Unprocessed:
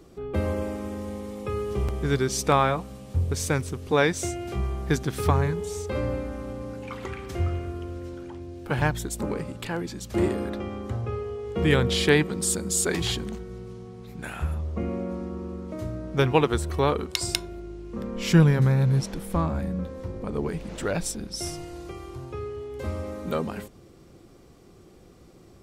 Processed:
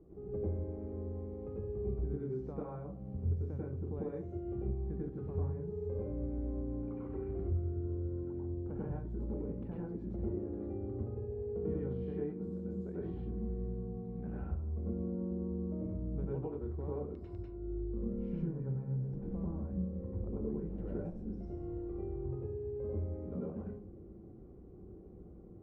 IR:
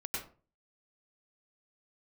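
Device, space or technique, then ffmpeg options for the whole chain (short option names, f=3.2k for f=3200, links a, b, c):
television next door: -filter_complex "[0:a]acompressor=threshold=-35dB:ratio=5,lowpass=500[a];[1:a]atrim=start_sample=2205[b];[a][b]afir=irnorm=-1:irlink=0,volume=-3dB"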